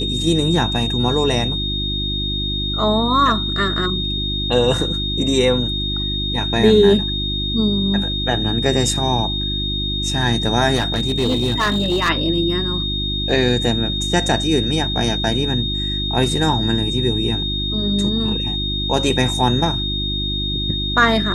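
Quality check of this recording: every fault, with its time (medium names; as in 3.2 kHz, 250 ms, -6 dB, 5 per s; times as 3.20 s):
hum 50 Hz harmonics 7 -25 dBFS
whine 3.7 kHz -22 dBFS
10.75–12.10 s: clipped -13.5 dBFS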